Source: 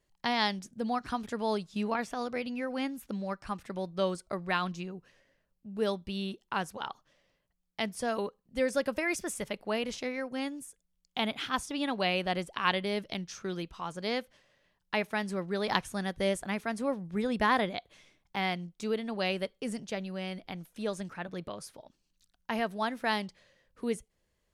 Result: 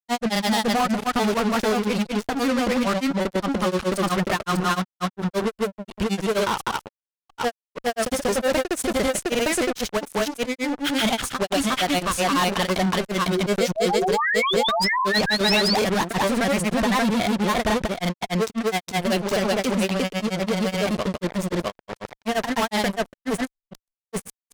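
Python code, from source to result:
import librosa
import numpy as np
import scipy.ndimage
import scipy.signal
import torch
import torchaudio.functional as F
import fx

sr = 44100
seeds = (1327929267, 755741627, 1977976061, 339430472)

y = fx.fuzz(x, sr, gain_db=42.0, gate_db=-42.0)
y = fx.spec_paint(y, sr, seeds[0], shape='rise', start_s=13.81, length_s=1.63, low_hz=290.0, high_hz=6500.0, level_db=-17.0)
y = fx.granulator(y, sr, seeds[1], grain_ms=100.0, per_s=24.0, spray_ms=596.0, spread_st=0)
y = y * librosa.db_to_amplitude(-3.0)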